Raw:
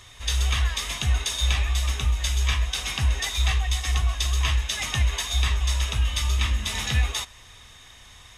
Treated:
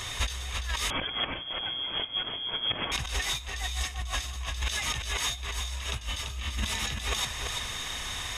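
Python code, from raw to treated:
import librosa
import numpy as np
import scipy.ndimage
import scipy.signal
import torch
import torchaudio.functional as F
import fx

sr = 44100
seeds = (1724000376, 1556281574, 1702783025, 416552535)

y = fx.low_shelf(x, sr, hz=150.0, db=-4.5)
y = fx.over_compress(y, sr, threshold_db=-37.0, ratio=-1.0)
y = y + 10.0 ** (-5.5 / 20.0) * np.pad(y, (int(339 * sr / 1000.0), 0))[:len(y)]
y = fx.freq_invert(y, sr, carrier_hz=3300, at=(0.9, 2.92))
y = F.gain(torch.from_numpy(y), 3.0).numpy()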